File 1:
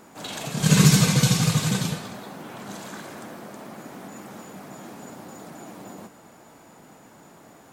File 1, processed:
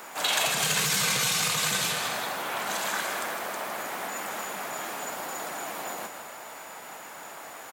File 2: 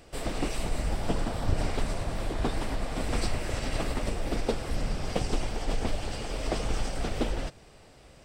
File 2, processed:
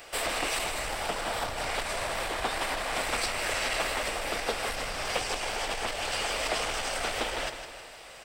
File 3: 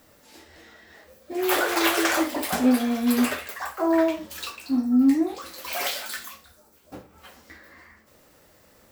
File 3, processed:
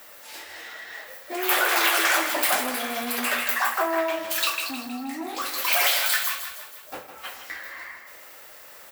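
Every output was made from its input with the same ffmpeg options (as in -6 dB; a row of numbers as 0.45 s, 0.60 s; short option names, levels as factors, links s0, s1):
-filter_complex "[0:a]acompressor=threshold=0.0398:ratio=3,aeval=exprs='0.178*(cos(1*acos(clip(val(0)/0.178,-1,1)))-cos(1*PI/2))+0.0282*(cos(5*acos(clip(val(0)/0.178,-1,1)))-cos(5*PI/2))':c=same,crystalizer=i=5.5:c=0,acrossover=split=490 3000:gain=0.141 1 0.2[s0][s1][s2];[s0][s1][s2]amix=inputs=3:normalize=0,asplit=2[s3][s4];[s4]aecho=0:1:158|316|474|632|790:0.335|0.164|0.0804|0.0394|0.0193[s5];[s3][s5]amix=inputs=2:normalize=0,volume=1.33"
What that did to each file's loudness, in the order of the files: -7.0 LU, +2.5 LU, +1.0 LU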